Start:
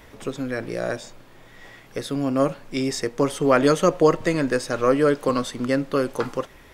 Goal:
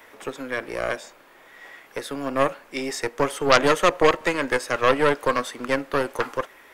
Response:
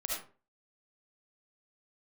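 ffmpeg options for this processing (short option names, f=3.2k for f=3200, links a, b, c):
-filter_complex "[0:a]acrossover=split=270 2200:gain=0.112 1 0.112[a][b][c];[a][b][c]amix=inputs=3:normalize=0,aeval=exprs='0.562*(cos(1*acos(clip(val(0)/0.562,-1,1)))-cos(1*PI/2))+0.0708*(cos(6*acos(clip(val(0)/0.562,-1,1)))-cos(6*PI/2))':c=same,crystalizer=i=9:c=0,volume=-2.5dB"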